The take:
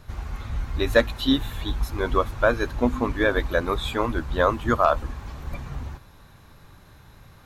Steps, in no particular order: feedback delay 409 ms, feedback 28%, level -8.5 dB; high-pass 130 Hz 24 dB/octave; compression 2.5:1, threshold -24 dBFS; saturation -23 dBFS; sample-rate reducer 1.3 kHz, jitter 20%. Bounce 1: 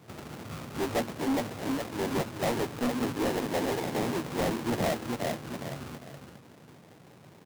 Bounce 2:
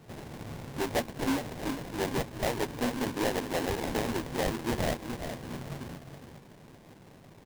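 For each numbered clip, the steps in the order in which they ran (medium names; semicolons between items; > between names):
feedback delay > sample-rate reducer > high-pass > saturation > compression; compression > high-pass > saturation > feedback delay > sample-rate reducer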